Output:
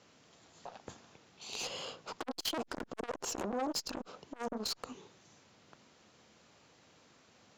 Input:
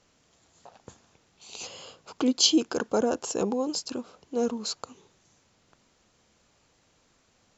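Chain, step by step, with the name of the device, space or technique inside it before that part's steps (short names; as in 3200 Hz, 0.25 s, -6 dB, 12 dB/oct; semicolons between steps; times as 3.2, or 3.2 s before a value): valve radio (BPF 110–5900 Hz; tube stage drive 33 dB, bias 0.35; core saturation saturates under 630 Hz); gain +4.5 dB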